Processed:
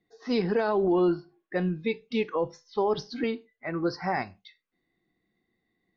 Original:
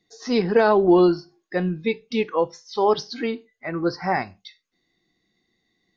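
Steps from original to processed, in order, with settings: 0.92–1.56 s: low-pass 3.3 kHz 24 dB/octave; 2.35–3.24 s: tilt EQ -2 dB/octave; level-controlled noise filter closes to 2.1 kHz, open at -17.5 dBFS; peak limiter -13.5 dBFS, peak gain reduction 7.5 dB; trim -3.5 dB

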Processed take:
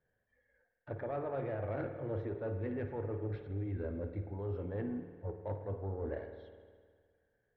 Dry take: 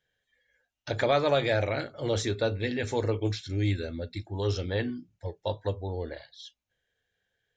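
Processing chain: Bessel low-pass 1.1 kHz, order 4; reverse; compression 12:1, threshold -37 dBFS, peak gain reduction 17 dB; reverse; saturation -32 dBFS, distortion -22 dB; spring tank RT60 1.8 s, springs 51 ms, chirp 35 ms, DRR 6.5 dB; trim +3 dB

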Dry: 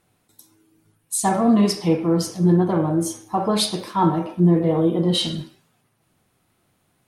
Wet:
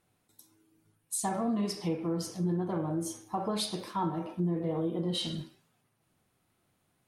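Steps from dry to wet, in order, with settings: compression 2.5:1, threshold -22 dBFS, peak gain reduction 7.5 dB; trim -8 dB

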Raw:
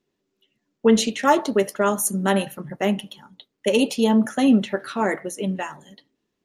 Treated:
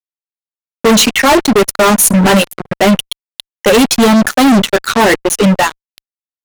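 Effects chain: reverb removal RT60 1.3 s; fuzz box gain 32 dB, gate -36 dBFS; trim +7.5 dB

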